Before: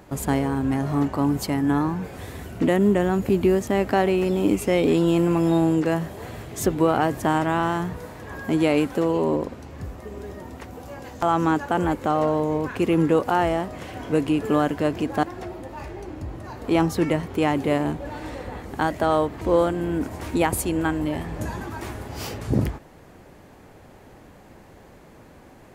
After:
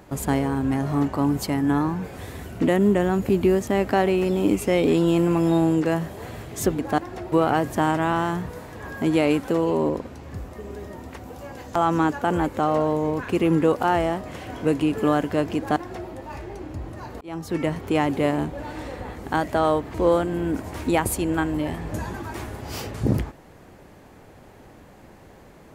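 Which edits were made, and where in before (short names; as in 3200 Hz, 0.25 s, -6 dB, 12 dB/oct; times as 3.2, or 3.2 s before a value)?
15.04–15.57 copy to 6.79
16.68–17.23 fade in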